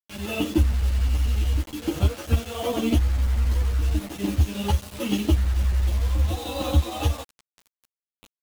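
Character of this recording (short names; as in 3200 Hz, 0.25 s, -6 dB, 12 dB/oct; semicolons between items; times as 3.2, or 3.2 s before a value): chopped level 11 Hz, depth 65%, duty 80%; a quantiser's noise floor 6-bit, dither none; a shimmering, thickened sound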